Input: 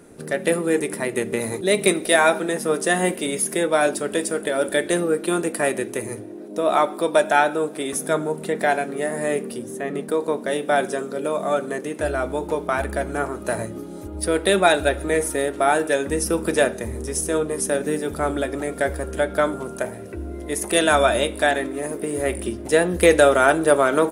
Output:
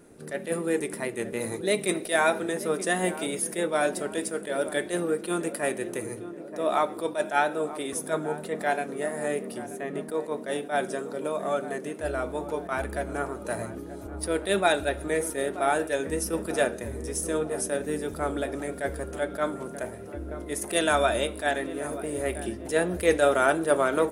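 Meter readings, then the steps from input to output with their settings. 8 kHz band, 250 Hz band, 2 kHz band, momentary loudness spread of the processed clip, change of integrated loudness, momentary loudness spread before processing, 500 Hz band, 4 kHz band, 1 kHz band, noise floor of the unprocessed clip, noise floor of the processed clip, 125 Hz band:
-6.5 dB, -6.5 dB, -7.0 dB, 10 LU, -6.5 dB, 11 LU, -6.5 dB, -7.0 dB, -6.5 dB, -35 dBFS, -40 dBFS, -6.5 dB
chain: vibrato 3.1 Hz 23 cents; darkening echo 0.932 s, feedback 60%, low-pass 1400 Hz, level -14 dB; attack slew limiter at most 230 dB/s; gain -6 dB

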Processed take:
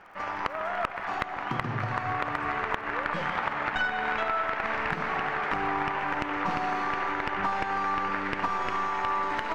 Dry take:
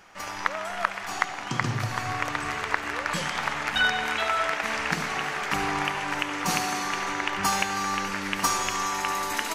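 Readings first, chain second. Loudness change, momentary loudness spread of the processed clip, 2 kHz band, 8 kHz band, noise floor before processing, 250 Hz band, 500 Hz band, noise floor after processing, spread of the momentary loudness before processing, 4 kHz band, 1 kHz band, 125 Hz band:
-2.5 dB, 3 LU, -3.0 dB, under -20 dB, -36 dBFS, -2.0 dB, 0.0 dB, -37 dBFS, 5 LU, -10.5 dB, 0.0 dB, -3.5 dB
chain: tracing distortion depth 0.17 ms; LPF 1700 Hz 12 dB/oct; low shelf 380 Hz -7 dB; compressor, threshold -30 dBFS, peak gain reduction 10 dB; crackle 43/s -54 dBFS; hard clip -20 dBFS, distortion -27 dB; echo with dull and thin repeats by turns 0.145 s, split 890 Hz, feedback 62%, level -12 dB; gain +5 dB

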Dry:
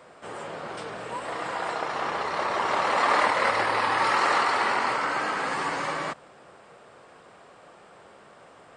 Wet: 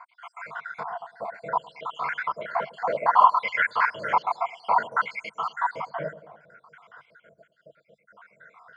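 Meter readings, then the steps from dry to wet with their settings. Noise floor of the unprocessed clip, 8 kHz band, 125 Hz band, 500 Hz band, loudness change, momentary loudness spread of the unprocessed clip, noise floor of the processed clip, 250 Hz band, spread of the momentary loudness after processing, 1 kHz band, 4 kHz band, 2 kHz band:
-52 dBFS, under -15 dB, -4.5 dB, -3.0 dB, -0.5 dB, 14 LU, -69 dBFS, -11.0 dB, 17 LU, +1.0 dB, -10.5 dB, -2.0 dB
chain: random spectral dropouts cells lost 71%; resonant low shelf 220 Hz +8 dB, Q 3; in parallel at -11.5 dB: soft clip -23 dBFS, distortion -13 dB; on the sum: wah 0.62 Hz 610–1600 Hz, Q 2.4; ripple EQ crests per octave 1.8, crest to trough 9 dB; on a send: dark delay 0.109 s, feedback 48%, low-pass 560 Hz, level -13.5 dB; on the sum: gain +8 dB

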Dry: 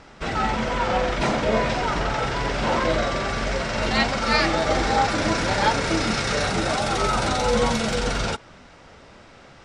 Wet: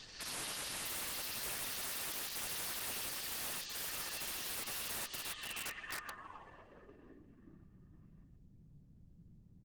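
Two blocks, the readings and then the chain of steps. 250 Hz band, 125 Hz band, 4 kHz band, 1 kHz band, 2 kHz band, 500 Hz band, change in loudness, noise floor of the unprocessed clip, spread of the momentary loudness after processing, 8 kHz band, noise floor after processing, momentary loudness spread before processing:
-30.5 dB, -30.0 dB, -15.5 dB, -28.0 dB, -20.5 dB, -31.5 dB, -17.0 dB, -48 dBFS, 11 LU, -8.0 dB, -62 dBFS, 5 LU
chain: spectral gate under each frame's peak -25 dB weak; fifteen-band EQ 100 Hz -7 dB, 250 Hz -7 dB, 1600 Hz +6 dB; compressor 6:1, threshold -49 dBFS, peak gain reduction 19 dB; limiter -44 dBFS, peak gain reduction 7.5 dB; small resonant body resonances 260/1200/1800/2700 Hz, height 11 dB, ringing for 25 ms; pre-echo 54 ms -15 dB; added noise pink -69 dBFS; low-pass sweep 4700 Hz -> 170 Hz, 5.18–7.62; on a send: echo 0.158 s -23 dB; on the sum: wrapped overs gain 44 dB; gain +10 dB; Opus 32 kbps 48000 Hz

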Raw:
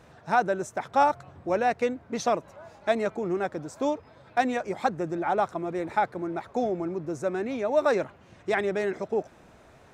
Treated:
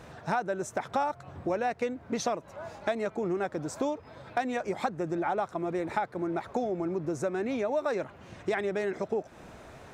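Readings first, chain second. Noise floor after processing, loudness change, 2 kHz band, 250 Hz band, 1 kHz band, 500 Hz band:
-52 dBFS, -4.0 dB, -4.5 dB, -2.0 dB, -5.5 dB, -4.0 dB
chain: compressor 4:1, threshold -34 dBFS, peak gain reduction 15 dB; gain +5.5 dB

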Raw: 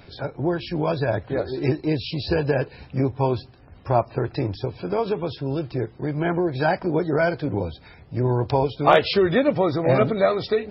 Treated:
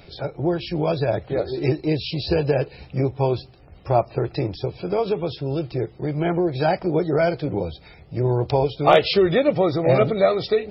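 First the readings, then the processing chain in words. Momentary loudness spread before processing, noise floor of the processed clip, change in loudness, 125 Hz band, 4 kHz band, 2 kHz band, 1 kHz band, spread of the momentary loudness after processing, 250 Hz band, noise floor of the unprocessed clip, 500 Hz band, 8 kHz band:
9 LU, -48 dBFS, +1.0 dB, +1.0 dB, +2.5 dB, -2.0 dB, 0.0 dB, 10 LU, +0.5 dB, -48 dBFS, +2.0 dB, n/a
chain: thirty-one-band EQ 100 Hz -7 dB, 250 Hz -8 dB, 1000 Hz -7 dB, 1600 Hz -8 dB; gain +2.5 dB

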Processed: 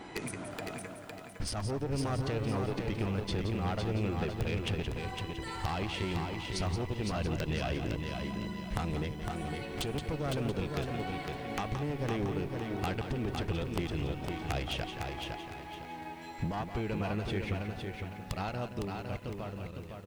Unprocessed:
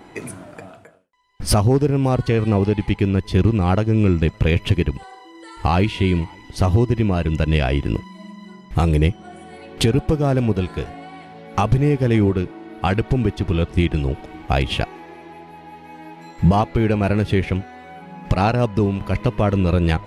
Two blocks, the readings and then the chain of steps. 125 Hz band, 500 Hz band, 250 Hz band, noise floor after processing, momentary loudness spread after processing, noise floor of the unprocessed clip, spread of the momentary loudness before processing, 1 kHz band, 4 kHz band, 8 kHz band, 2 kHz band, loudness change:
-16.5 dB, -14.5 dB, -15.5 dB, -45 dBFS, 7 LU, -44 dBFS, 20 LU, -13.0 dB, -10.0 dB, -11.0 dB, -11.0 dB, -16.0 dB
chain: ending faded out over 6.42 s; tube stage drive 15 dB, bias 0.65; high shelf 2300 Hz +9 dB; compressor 16:1, threshold -31 dBFS, peak gain reduction 18 dB; on a send: echo 0.173 s -9 dB; on the sum: downsampling 22050 Hz; wrapped overs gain 21 dB; high shelf 5300 Hz -8.5 dB; lo-fi delay 0.508 s, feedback 35%, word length 10-bit, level -4.5 dB

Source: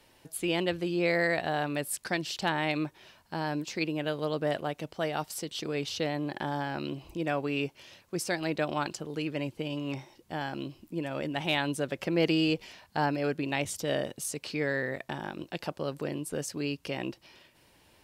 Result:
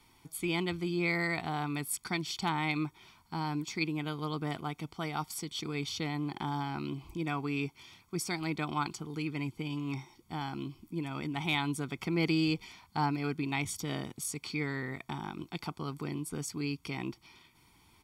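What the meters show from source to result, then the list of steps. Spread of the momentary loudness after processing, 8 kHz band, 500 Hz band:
9 LU, -1.5 dB, -9.0 dB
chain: comb 0.9 ms, depth 89%; gain -4 dB

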